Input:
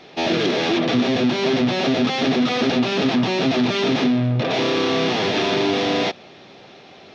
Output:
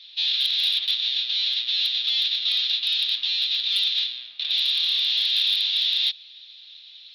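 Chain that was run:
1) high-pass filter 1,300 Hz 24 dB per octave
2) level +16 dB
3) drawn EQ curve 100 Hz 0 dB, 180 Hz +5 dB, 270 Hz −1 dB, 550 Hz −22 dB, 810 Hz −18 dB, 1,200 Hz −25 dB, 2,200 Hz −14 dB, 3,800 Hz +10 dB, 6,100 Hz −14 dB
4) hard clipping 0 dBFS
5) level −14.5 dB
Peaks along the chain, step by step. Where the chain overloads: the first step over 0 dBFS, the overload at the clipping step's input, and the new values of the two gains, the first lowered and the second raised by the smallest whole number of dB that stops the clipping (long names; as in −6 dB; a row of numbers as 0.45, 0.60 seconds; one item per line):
−13.0, +3.0, +5.0, 0.0, −14.5 dBFS
step 2, 5.0 dB
step 2 +11 dB, step 5 −9.5 dB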